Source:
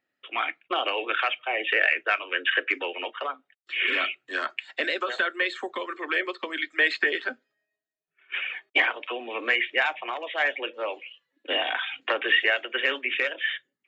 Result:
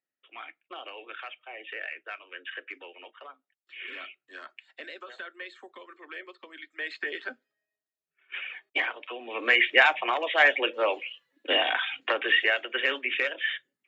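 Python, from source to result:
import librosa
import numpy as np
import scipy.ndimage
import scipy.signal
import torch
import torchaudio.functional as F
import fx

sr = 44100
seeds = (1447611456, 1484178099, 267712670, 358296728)

y = fx.gain(x, sr, db=fx.line((6.71, -15.0), (7.25, -6.0), (9.18, -6.0), (9.65, 5.0), (11.03, 5.0), (12.21, -1.5)))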